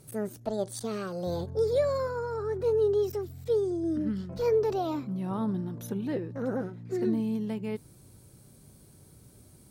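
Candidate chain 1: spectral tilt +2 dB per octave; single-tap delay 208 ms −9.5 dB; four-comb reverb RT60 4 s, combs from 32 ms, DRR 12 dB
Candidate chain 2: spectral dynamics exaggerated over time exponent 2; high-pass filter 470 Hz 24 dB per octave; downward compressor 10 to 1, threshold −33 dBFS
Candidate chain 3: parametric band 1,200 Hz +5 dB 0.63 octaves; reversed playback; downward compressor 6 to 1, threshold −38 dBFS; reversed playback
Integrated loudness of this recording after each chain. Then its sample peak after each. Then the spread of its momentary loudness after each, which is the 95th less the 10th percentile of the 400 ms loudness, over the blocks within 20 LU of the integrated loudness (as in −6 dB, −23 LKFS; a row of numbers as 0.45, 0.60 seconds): −32.0, −42.0, −41.0 LKFS; −17.0, −27.5, −28.5 dBFS; 22, 15, 15 LU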